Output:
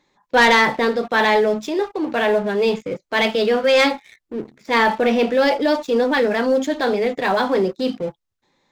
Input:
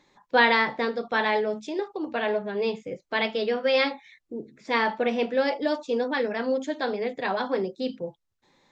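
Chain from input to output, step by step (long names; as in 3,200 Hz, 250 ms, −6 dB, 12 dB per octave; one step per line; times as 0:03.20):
transient designer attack −4 dB, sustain +2 dB
leveller curve on the samples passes 2
level +2 dB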